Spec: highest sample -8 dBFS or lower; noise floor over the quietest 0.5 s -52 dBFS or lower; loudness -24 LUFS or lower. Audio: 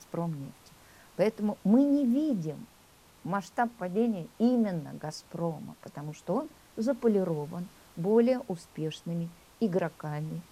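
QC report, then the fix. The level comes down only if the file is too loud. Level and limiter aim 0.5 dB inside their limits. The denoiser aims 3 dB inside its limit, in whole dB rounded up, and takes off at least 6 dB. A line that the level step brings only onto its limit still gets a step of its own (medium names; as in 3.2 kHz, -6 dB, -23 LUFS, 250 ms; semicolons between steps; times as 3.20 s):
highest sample -13.0 dBFS: pass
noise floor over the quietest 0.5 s -59 dBFS: pass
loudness -30.5 LUFS: pass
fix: none needed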